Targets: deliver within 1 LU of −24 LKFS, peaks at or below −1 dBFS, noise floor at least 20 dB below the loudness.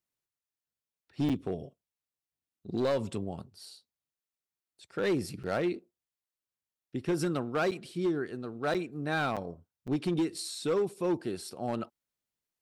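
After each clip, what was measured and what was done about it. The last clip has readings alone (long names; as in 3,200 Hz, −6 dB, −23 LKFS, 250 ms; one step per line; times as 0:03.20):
share of clipped samples 1.5%; peaks flattened at −23.5 dBFS; number of dropouts 6; longest dropout 7.0 ms; integrated loudness −33.0 LKFS; sample peak −23.5 dBFS; target loudness −24.0 LKFS
→ clipped peaks rebuilt −23.5 dBFS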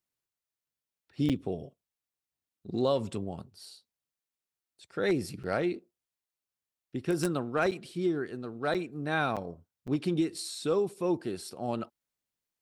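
share of clipped samples 0.0%; number of dropouts 6; longest dropout 7.0 ms
→ repair the gap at 0:01.29/0:05.43/0:07.71/0:08.74/0:09.36/0:09.87, 7 ms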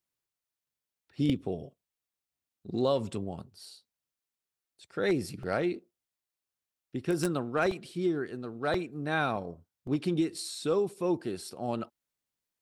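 number of dropouts 0; integrated loudness −32.0 LKFS; sample peak −14.5 dBFS; target loudness −24.0 LKFS
→ level +8 dB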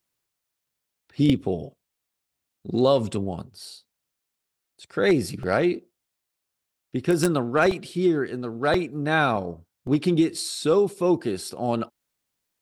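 integrated loudness −24.0 LKFS; sample peak −6.5 dBFS; background noise floor −82 dBFS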